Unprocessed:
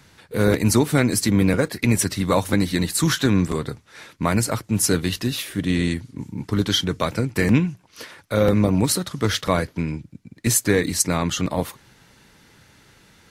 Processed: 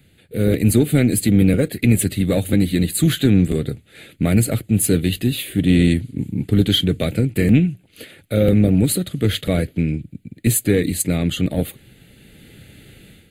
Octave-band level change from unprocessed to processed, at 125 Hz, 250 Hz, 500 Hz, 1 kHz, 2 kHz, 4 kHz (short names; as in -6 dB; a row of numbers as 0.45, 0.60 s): +5.0, +4.5, +1.5, -10.0, -2.0, +1.0 dB